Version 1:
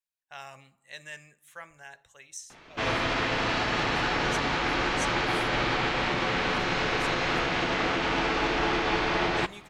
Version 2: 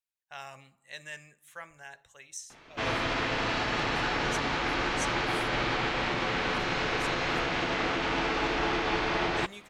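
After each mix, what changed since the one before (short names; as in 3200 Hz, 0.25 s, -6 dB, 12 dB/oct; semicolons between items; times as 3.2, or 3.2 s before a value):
background: send off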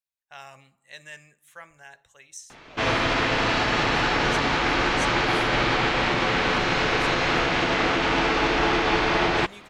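background +7.0 dB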